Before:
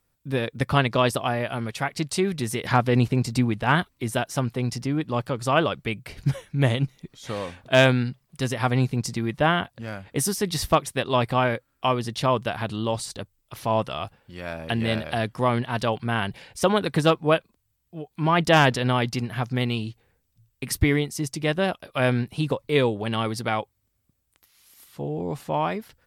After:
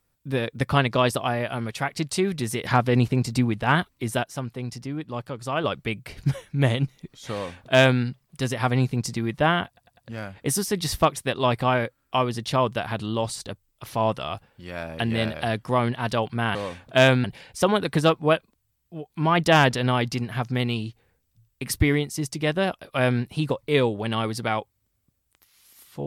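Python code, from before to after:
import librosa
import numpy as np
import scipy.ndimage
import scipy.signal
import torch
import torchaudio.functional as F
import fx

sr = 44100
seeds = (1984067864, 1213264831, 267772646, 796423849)

y = fx.edit(x, sr, fx.clip_gain(start_s=4.23, length_s=1.41, db=-6.0),
    fx.duplicate(start_s=7.32, length_s=0.69, to_s=16.25),
    fx.stutter(start_s=9.67, slice_s=0.1, count=4), tone=tone)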